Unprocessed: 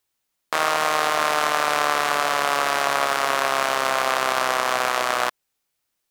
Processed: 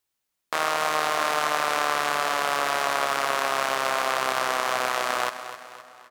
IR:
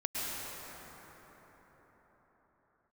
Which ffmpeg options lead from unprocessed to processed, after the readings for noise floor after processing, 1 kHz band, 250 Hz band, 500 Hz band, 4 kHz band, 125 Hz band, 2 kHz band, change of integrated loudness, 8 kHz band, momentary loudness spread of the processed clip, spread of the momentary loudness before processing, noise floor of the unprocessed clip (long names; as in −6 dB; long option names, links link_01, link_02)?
−81 dBFS, −3.5 dB, −3.5 dB, −3.5 dB, −3.5 dB, −3.5 dB, −3.5 dB, −3.5 dB, −3.5 dB, 5 LU, 2 LU, −77 dBFS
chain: -filter_complex "[0:a]aecho=1:1:259|518|777|1036|1295:0.251|0.118|0.0555|0.0261|0.0123,asplit=2[link_01][link_02];[1:a]atrim=start_sample=2205[link_03];[link_02][link_03]afir=irnorm=-1:irlink=0,volume=-27.5dB[link_04];[link_01][link_04]amix=inputs=2:normalize=0,volume=-4dB"